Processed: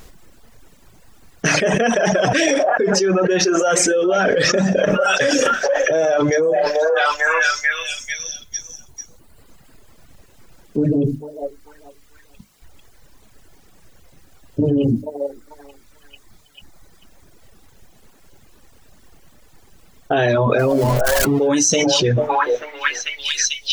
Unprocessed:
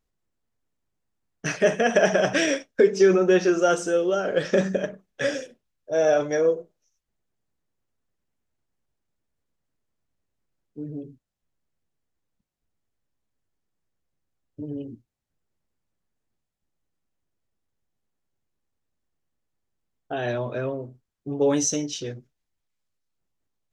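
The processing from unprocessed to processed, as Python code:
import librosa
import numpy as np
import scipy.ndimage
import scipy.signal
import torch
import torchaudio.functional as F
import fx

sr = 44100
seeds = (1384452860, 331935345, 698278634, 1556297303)

y = fx.zero_step(x, sr, step_db=-39.0, at=(20.59, 21.48))
y = fx.hum_notches(y, sr, base_hz=50, count=6)
y = fx.echo_stepped(y, sr, ms=443, hz=720.0, octaves=0.7, feedback_pct=70, wet_db=-9.0)
y = fx.dereverb_blind(y, sr, rt60_s=1.6)
y = fx.env_flatten(y, sr, amount_pct=100)
y = y * librosa.db_to_amplitude(-3.0)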